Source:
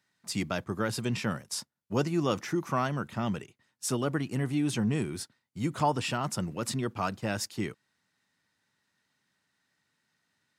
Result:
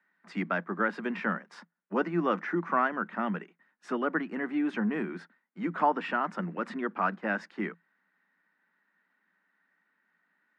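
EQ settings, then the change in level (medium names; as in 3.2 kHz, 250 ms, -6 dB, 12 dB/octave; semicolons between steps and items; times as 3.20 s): Chebyshev high-pass 170 Hz, order 8; resonant low-pass 1.7 kHz, resonance Q 2.5; 0.0 dB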